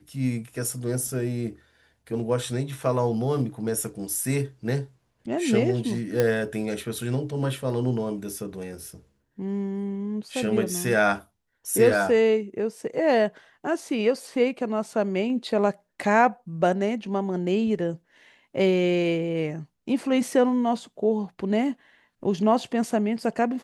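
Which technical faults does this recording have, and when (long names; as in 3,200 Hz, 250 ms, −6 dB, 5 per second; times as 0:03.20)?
0:06.20: click −9 dBFS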